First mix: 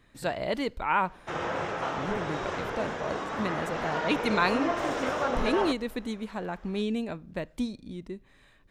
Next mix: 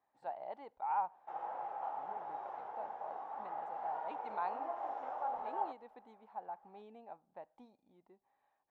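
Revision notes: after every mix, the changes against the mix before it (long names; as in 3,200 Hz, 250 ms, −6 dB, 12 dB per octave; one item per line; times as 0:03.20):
master: add resonant band-pass 810 Hz, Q 9.8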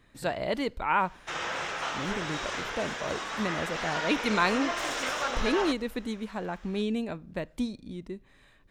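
background: add tilt shelving filter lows −9.5 dB, about 1,300 Hz
master: remove resonant band-pass 810 Hz, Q 9.8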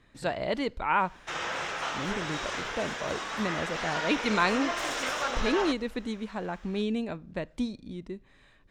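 speech: add low-pass filter 8,000 Hz 12 dB per octave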